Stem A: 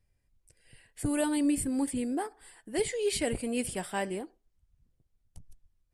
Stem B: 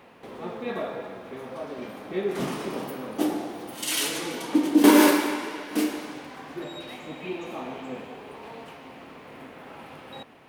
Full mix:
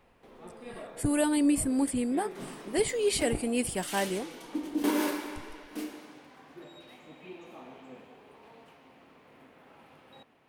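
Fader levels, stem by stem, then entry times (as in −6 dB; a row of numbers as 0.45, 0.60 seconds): +2.5, −12.5 decibels; 0.00, 0.00 seconds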